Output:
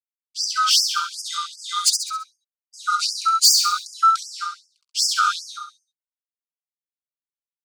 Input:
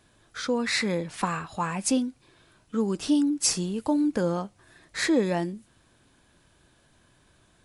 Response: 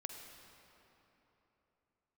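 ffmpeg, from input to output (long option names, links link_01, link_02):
-filter_complex "[0:a]afftfilt=real='real(if(lt(b,960),b+48*(1-2*mod(floor(b/48),2)),b),0)':imag='imag(if(lt(b,960),b+48*(1-2*mod(floor(b/48),2)),b),0)':win_size=2048:overlap=0.75,acontrast=74,aeval=exprs='sgn(val(0))*max(abs(val(0))-0.0106,0)':channel_layout=same,asuperstop=centerf=1800:order=4:qfactor=1.5,highpass=260,equalizer=frequency=410:width_type=q:width=4:gain=-10,equalizer=frequency=2800:width_type=q:width=4:gain=-3,equalizer=frequency=4700:width_type=q:width=4:gain=10,lowpass=frequency=9100:width=0.5412,lowpass=frequency=9100:width=1.3066,asoftclip=type=tanh:threshold=-14dB,equalizer=frequency=570:width_type=o:width=1.6:gain=-6.5,asplit=2[link_01][link_02];[link_02]aecho=0:1:67|134|201|268|335:0.596|0.262|0.115|0.0507|0.0223[link_03];[link_01][link_03]amix=inputs=2:normalize=0,afftfilt=real='re*gte(b*sr/1024,890*pow(4900/890,0.5+0.5*sin(2*PI*2.6*pts/sr)))':imag='im*gte(b*sr/1024,890*pow(4900/890,0.5+0.5*sin(2*PI*2.6*pts/sr)))':win_size=1024:overlap=0.75,volume=6dB"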